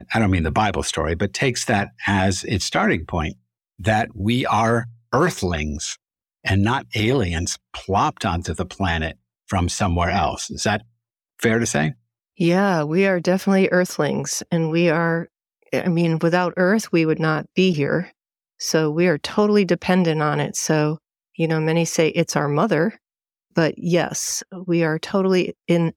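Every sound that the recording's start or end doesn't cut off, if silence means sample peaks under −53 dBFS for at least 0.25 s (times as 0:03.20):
0:03.79–0:05.96
0:06.44–0:09.16
0:09.48–0:10.88
0:11.39–0:11.97
0:12.37–0:15.28
0:15.62–0:18.12
0:18.59–0:20.98
0:21.35–0:22.97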